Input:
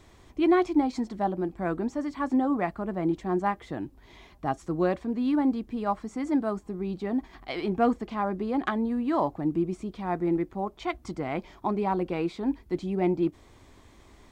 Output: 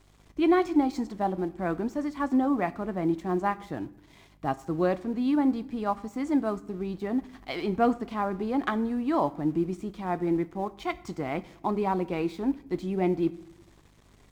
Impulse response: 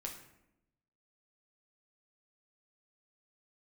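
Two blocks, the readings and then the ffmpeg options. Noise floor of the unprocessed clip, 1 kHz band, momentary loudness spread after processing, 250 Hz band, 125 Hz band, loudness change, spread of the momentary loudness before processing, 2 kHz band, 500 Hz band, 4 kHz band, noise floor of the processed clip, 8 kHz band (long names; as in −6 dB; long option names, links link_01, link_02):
−55 dBFS, 0.0 dB, 9 LU, 0.0 dB, 0.0 dB, 0.0 dB, 8 LU, 0.0 dB, 0.0 dB, +0.5 dB, −58 dBFS, can't be measured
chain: -filter_complex "[0:a]aeval=exprs='sgn(val(0))*max(abs(val(0))-0.00178,0)':channel_layout=same,aeval=exprs='val(0)+0.00112*(sin(2*PI*50*n/s)+sin(2*PI*2*50*n/s)/2+sin(2*PI*3*50*n/s)/3+sin(2*PI*4*50*n/s)/4+sin(2*PI*5*50*n/s)/5)':channel_layout=same,asplit=2[link_01][link_02];[1:a]atrim=start_sample=2205,highshelf=frequency=4100:gain=10.5[link_03];[link_02][link_03]afir=irnorm=-1:irlink=0,volume=-9.5dB[link_04];[link_01][link_04]amix=inputs=2:normalize=0,volume=-1.5dB"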